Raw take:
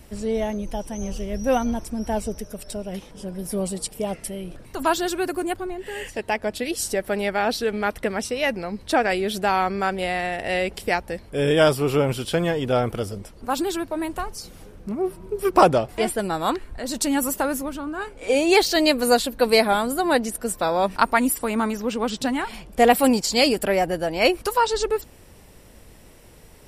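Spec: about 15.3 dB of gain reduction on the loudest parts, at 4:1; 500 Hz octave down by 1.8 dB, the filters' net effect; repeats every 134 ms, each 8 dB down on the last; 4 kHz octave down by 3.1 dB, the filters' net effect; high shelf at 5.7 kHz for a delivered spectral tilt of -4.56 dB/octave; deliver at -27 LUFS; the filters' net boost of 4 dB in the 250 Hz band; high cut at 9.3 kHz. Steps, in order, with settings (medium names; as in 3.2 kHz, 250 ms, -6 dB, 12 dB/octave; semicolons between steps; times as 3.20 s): low-pass 9.3 kHz; peaking EQ 250 Hz +6 dB; peaking EQ 500 Hz -4 dB; peaking EQ 4 kHz -5.5 dB; treble shelf 5.7 kHz +4.5 dB; compression 4:1, threshold -29 dBFS; feedback delay 134 ms, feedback 40%, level -8 dB; trim +4.5 dB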